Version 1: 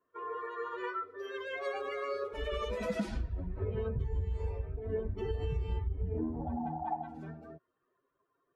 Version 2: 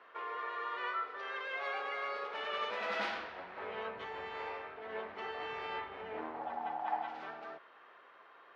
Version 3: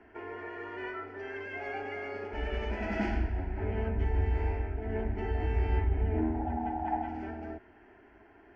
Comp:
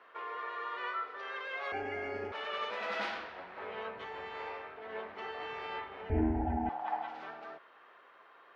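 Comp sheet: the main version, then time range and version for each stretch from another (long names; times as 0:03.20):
2
0:01.72–0:02.32: punch in from 3
0:06.10–0:06.69: punch in from 3
not used: 1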